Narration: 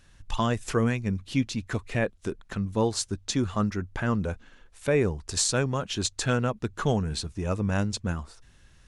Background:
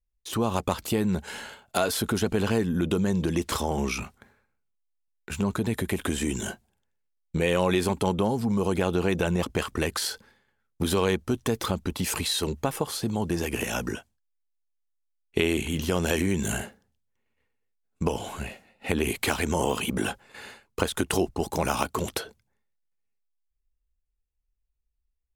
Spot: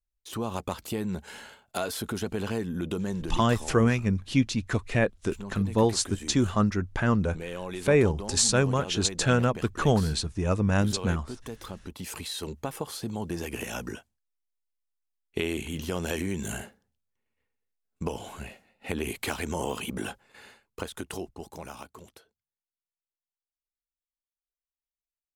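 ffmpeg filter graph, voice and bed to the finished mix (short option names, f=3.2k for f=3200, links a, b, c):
-filter_complex "[0:a]adelay=3000,volume=2.5dB[a];[1:a]volume=1.5dB,afade=t=out:st=3.12:d=0.32:silence=0.446684,afade=t=in:st=11.66:d=1.22:silence=0.421697,afade=t=out:st=19.85:d=2.47:silence=0.0794328[b];[a][b]amix=inputs=2:normalize=0"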